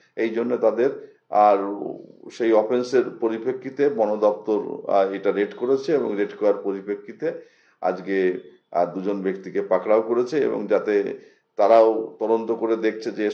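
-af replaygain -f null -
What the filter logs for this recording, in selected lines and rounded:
track_gain = +1.1 dB
track_peak = 0.452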